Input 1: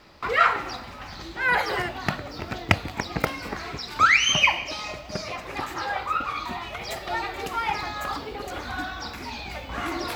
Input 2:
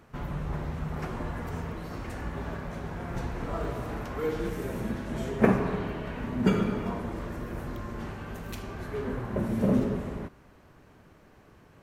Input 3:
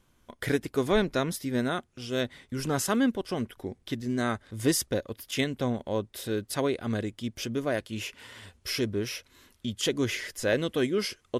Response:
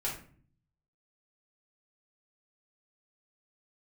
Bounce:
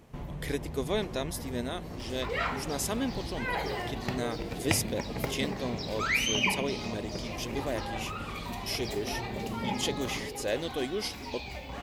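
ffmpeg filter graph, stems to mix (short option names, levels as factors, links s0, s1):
-filter_complex "[0:a]acompressor=mode=upward:threshold=0.0447:ratio=2.5,adelay=2000,volume=0.335,asplit=2[s0][s1];[s1]volume=0.422[s2];[1:a]acompressor=threshold=0.0126:ratio=3,volume=1.12[s3];[2:a]lowshelf=f=340:g=-9.5,volume=0.841[s4];[3:a]atrim=start_sample=2205[s5];[s2][s5]afir=irnorm=-1:irlink=0[s6];[s0][s3][s4][s6]amix=inputs=4:normalize=0,equalizer=f=1400:w=2:g=-10"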